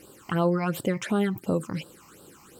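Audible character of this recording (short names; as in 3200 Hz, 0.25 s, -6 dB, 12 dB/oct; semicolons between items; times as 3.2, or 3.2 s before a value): a quantiser's noise floor 12-bit, dither triangular; phasing stages 8, 2.8 Hz, lowest notch 460–2100 Hz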